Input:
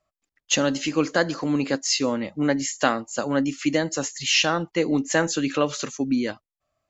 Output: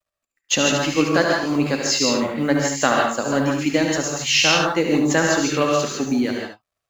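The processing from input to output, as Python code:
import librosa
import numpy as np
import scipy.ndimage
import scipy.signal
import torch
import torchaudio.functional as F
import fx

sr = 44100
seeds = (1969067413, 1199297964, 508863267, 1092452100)

y = fx.law_mismatch(x, sr, coded='A')
y = y + 10.0 ** (-8.0 / 20.0) * np.pad(y, (int(73 * sr / 1000.0), 0))[:len(y)]
y = fx.rev_gated(y, sr, seeds[0], gate_ms=180, shape='rising', drr_db=0.0)
y = y * librosa.db_to_amplitude(2.0)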